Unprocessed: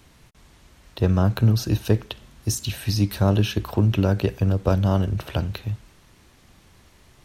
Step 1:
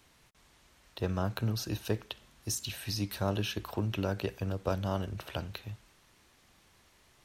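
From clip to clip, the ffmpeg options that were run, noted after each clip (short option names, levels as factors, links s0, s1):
-af "lowshelf=f=340:g=-9,volume=0.473"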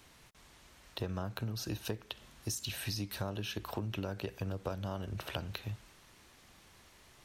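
-af "acompressor=threshold=0.0126:ratio=6,volume=1.5"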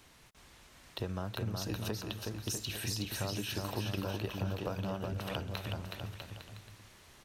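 -af "aecho=1:1:370|647.5|855.6|1012|1129:0.631|0.398|0.251|0.158|0.1"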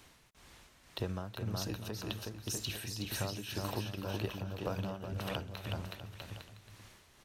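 -af "tremolo=f=1.9:d=0.55,volume=1.12"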